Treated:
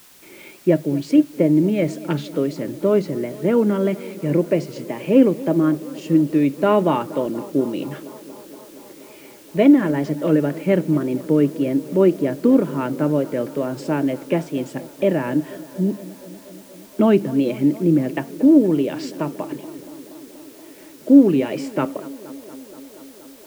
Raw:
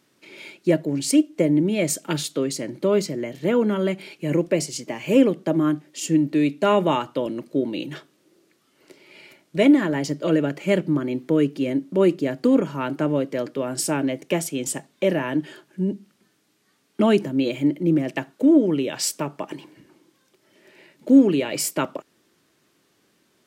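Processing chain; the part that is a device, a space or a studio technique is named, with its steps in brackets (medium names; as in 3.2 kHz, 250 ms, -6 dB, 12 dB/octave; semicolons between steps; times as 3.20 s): tape echo 237 ms, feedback 88%, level -17.5 dB, low-pass 2.4 kHz; cassette deck with a dirty head (tape spacing loss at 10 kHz 30 dB; wow and flutter; white noise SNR 29 dB); trim +4 dB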